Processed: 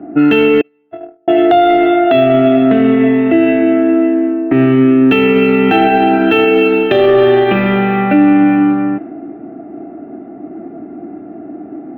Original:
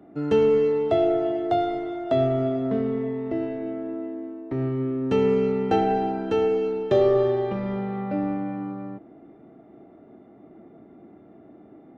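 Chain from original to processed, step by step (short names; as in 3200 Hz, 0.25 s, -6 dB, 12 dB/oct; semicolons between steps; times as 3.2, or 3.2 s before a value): 0.61–1.28 gate -15 dBFS, range -50 dB; low-pass opened by the level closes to 820 Hz, open at -21.5 dBFS; band shelf 2200 Hz +15.5 dB; small resonant body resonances 300/700/2600 Hz, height 13 dB, ringing for 25 ms; maximiser +11 dB; decimation joined by straight lines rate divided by 2×; gain -1 dB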